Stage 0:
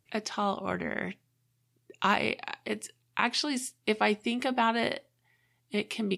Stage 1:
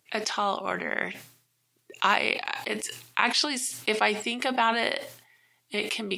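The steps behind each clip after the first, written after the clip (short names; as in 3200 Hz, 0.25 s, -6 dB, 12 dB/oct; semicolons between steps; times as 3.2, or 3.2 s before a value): in parallel at -1 dB: compressor, threshold -36 dBFS, peak gain reduction 14.5 dB; on the sum: HPF 680 Hz 6 dB/oct; sustainer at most 100 dB/s; gain +3 dB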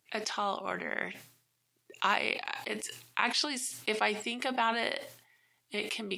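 crackle 230/s -59 dBFS; gain -5.5 dB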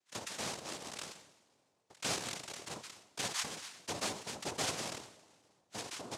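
ring modulator 240 Hz; shoebox room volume 3200 m³, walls mixed, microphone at 0.36 m; noise vocoder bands 2; gain -5 dB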